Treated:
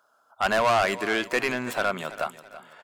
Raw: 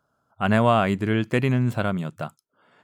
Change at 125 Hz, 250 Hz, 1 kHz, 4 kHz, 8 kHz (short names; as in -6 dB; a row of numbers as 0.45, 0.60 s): -18.0 dB, -10.0 dB, +0.5 dB, +3.5 dB, n/a